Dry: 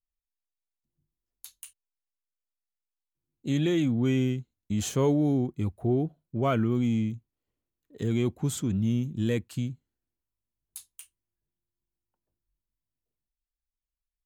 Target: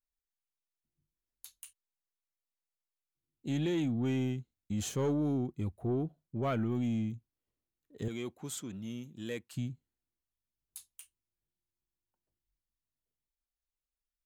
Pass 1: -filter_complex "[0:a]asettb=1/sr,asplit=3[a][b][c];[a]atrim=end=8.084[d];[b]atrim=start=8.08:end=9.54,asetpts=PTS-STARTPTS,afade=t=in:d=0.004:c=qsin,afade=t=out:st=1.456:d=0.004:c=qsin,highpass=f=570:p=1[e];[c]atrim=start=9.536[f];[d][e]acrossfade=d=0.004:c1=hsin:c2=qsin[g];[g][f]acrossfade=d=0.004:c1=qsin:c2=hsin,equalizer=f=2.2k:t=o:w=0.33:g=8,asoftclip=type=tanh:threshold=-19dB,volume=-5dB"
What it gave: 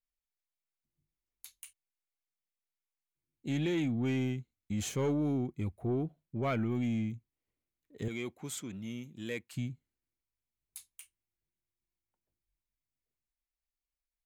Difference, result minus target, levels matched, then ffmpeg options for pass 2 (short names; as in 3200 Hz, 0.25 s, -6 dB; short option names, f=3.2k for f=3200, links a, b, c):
2000 Hz band +4.0 dB
-filter_complex "[0:a]asettb=1/sr,asplit=3[a][b][c];[a]atrim=end=8.084[d];[b]atrim=start=8.08:end=9.54,asetpts=PTS-STARTPTS,afade=t=in:d=0.004:c=qsin,afade=t=out:st=1.456:d=0.004:c=qsin,highpass=f=570:p=1[e];[c]atrim=start=9.536[f];[d][e]acrossfade=d=0.004:c1=hsin:c2=qsin[g];[g][f]acrossfade=d=0.004:c1=qsin:c2=hsin,asoftclip=type=tanh:threshold=-19dB,volume=-5dB"